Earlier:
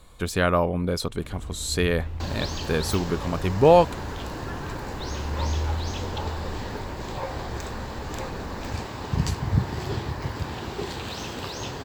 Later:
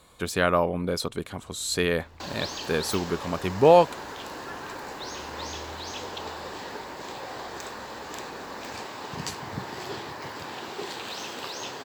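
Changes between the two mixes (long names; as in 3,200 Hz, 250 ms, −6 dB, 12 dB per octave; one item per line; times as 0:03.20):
first sound −10.5 dB
second sound: add high-pass filter 380 Hz 6 dB per octave
master: add high-pass filter 200 Hz 6 dB per octave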